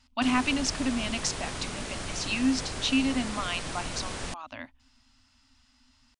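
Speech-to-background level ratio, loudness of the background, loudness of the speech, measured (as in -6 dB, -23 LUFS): 6.5 dB, -36.0 LUFS, -29.5 LUFS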